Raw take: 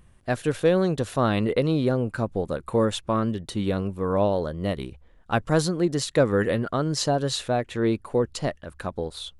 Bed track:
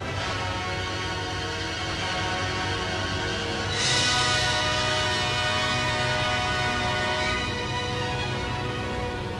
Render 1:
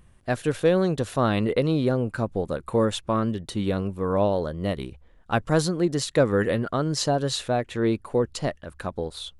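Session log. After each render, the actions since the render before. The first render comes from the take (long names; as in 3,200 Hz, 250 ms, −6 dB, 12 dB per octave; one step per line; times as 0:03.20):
no processing that can be heard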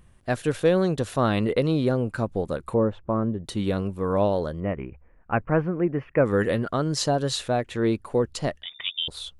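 0:02.74–0:03.44: low-pass filter 1,000 Hz
0:04.60–0:06.26: elliptic low-pass filter 2,500 Hz
0:08.63–0:09.08: voice inversion scrambler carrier 3,600 Hz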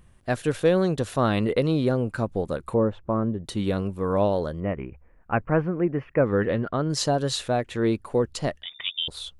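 0:06.14–0:06.90: high-frequency loss of the air 240 metres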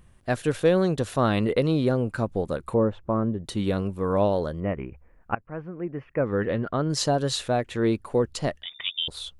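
0:05.35–0:06.78: fade in, from −22 dB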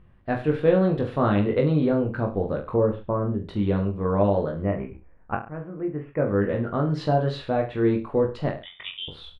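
high-frequency loss of the air 400 metres
reverse bouncing-ball delay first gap 20 ms, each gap 1.15×, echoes 5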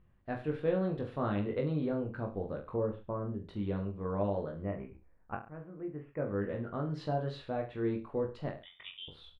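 level −11.5 dB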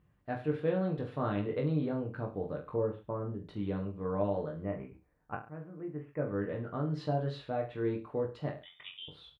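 high-pass filter 49 Hz
comb filter 6.7 ms, depth 36%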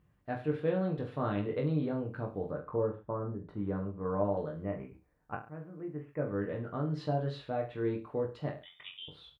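0:02.51–0:04.37: high shelf with overshoot 2,100 Hz −12 dB, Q 1.5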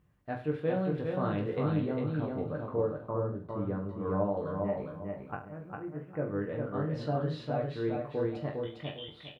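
repeating echo 404 ms, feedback 27%, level −3.5 dB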